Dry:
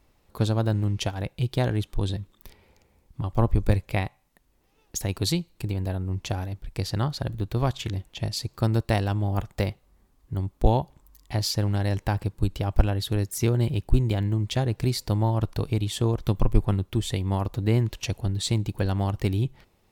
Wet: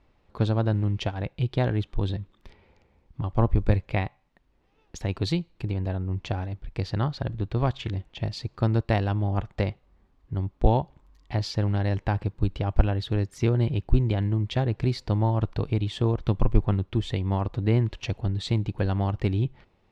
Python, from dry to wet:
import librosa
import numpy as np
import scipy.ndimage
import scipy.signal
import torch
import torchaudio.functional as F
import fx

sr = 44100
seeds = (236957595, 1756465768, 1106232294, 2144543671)

y = scipy.signal.sosfilt(scipy.signal.butter(2, 3400.0, 'lowpass', fs=sr, output='sos'), x)